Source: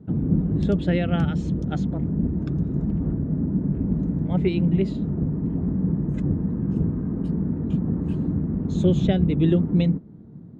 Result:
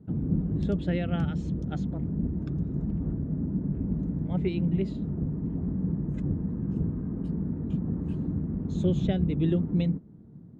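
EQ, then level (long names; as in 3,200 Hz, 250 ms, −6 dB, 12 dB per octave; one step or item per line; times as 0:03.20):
low-shelf EQ 120 Hz +3.5 dB
−7.0 dB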